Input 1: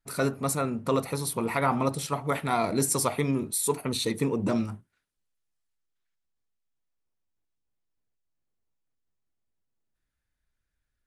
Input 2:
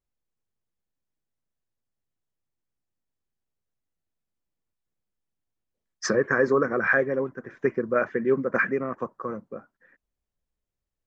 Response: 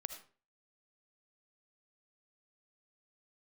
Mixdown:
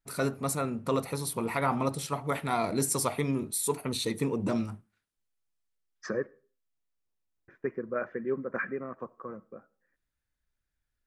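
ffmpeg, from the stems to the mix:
-filter_complex "[0:a]volume=-3.5dB,asplit=2[link_01][link_02];[link_02]volume=-18.5dB[link_03];[1:a]agate=range=-9dB:threshold=-45dB:ratio=16:detection=peak,equalizer=frequency=6600:width=0.71:gain=-10,volume=-10dB,asplit=3[link_04][link_05][link_06];[link_04]atrim=end=6.27,asetpts=PTS-STARTPTS,afade=type=out:start_time=6.266:duration=0.004:curve=hsin[link_07];[link_05]atrim=start=6.27:end=7.48,asetpts=PTS-STARTPTS,volume=0[link_08];[link_06]atrim=start=7.48,asetpts=PTS-STARTPTS,afade=type=in:duration=0.004:curve=hsin[link_09];[link_07][link_08][link_09]concat=n=3:v=0:a=1,asplit=2[link_10][link_11];[link_11]volume=-11.5dB[link_12];[2:a]atrim=start_sample=2205[link_13];[link_03][link_12]amix=inputs=2:normalize=0[link_14];[link_14][link_13]afir=irnorm=-1:irlink=0[link_15];[link_01][link_10][link_15]amix=inputs=3:normalize=0"

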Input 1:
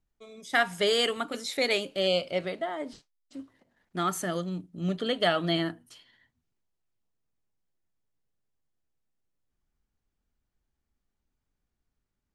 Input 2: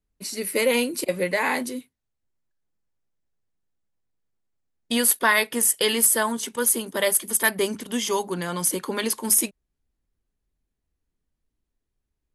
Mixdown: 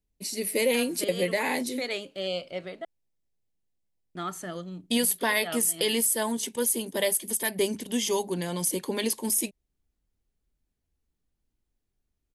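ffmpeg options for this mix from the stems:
ffmpeg -i stem1.wav -i stem2.wav -filter_complex "[0:a]adelay=200,volume=-5.5dB,asplit=3[link_01][link_02][link_03];[link_01]atrim=end=2.85,asetpts=PTS-STARTPTS,afade=type=out:start_time=2.846:duration=0.004:curve=hsin[link_04];[link_02]atrim=start=2.85:end=4.15,asetpts=PTS-STARTPTS,volume=0[link_05];[link_03]atrim=start=4.15,asetpts=PTS-STARTPTS,afade=type=in:duration=0.004:curve=hsin[link_06];[link_04][link_05][link_06]concat=n=3:v=0:a=1[link_07];[1:a]equalizer=frequency=1300:width_type=o:width=0.61:gain=-15,volume=-1dB,asplit=2[link_08][link_09];[link_09]apad=whole_len=553071[link_10];[link_07][link_10]sidechaincompress=threshold=-29dB:ratio=8:attack=5.1:release=197[link_11];[link_11][link_08]amix=inputs=2:normalize=0,alimiter=limit=-14.5dB:level=0:latency=1:release=96" out.wav

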